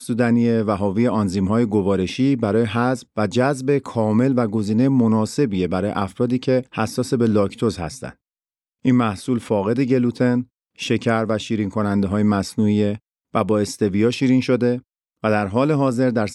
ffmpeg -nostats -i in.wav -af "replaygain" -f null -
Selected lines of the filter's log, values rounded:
track_gain = +0.8 dB
track_peak = 0.508